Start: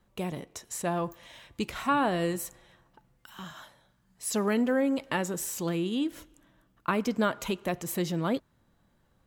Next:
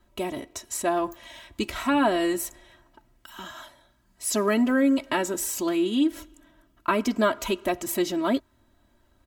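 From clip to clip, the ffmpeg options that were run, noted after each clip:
-af "aecho=1:1:3.1:0.9,volume=1.33"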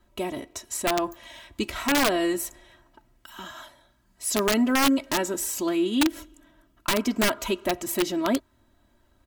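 -af "aeval=exprs='(mod(5.62*val(0)+1,2)-1)/5.62':c=same"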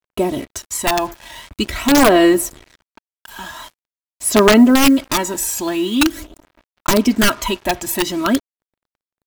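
-af "aphaser=in_gain=1:out_gain=1:delay=1.2:decay=0.53:speed=0.45:type=sinusoidal,acrusher=bits=6:mix=0:aa=0.5,volume=2.24"

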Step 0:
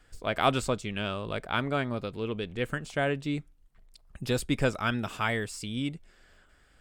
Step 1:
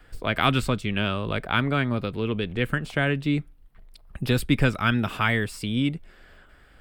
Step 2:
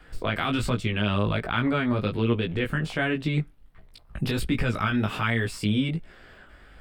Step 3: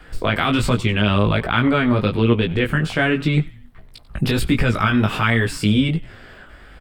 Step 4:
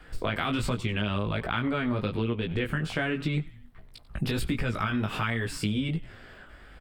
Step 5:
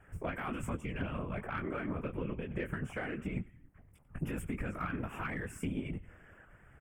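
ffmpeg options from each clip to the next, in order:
-filter_complex "[0:a]equalizer=f=6800:w=1.2:g=-12,acrossover=split=320|1200[s0][s1][s2];[s1]acompressor=threshold=0.01:ratio=6[s3];[s0][s3][s2]amix=inputs=3:normalize=0,volume=2.66"
-af "highshelf=f=8800:g=-7,alimiter=limit=0.126:level=0:latency=1:release=72,flanger=delay=17:depth=2.7:speed=1.3,volume=2.11"
-filter_complex "[0:a]asplit=4[s0][s1][s2][s3];[s1]adelay=92,afreqshift=-130,volume=0.112[s4];[s2]adelay=184,afreqshift=-260,volume=0.0462[s5];[s3]adelay=276,afreqshift=-390,volume=0.0188[s6];[s0][s4][s5][s6]amix=inputs=4:normalize=0,volume=2.37"
-af "acompressor=threshold=0.126:ratio=6,volume=0.473"
-af "afftfilt=real='hypot(re,im)*cos(2*PI*random(0))':imag='hypot(re,im)*sin(2*PI*random(1))':win_size=512:overlap=0.75,asuperstop=centerf=4200:order=4:qfactor=0.97,aeval=exprs='0.0891*(cos(1*acos(clip(val(0)/0.0891,-1,1)))-cos(1*PI/2))+0.00631*(cos(3*acos(clip(val(0)/0.0891,-1,1)))-cos(3*PI/2))':c=same,volume=0.891"

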